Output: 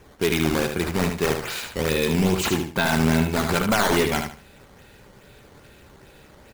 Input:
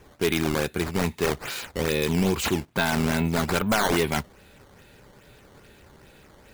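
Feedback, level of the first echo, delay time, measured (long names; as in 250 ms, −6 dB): 26%, −6.0 dB, 75 ms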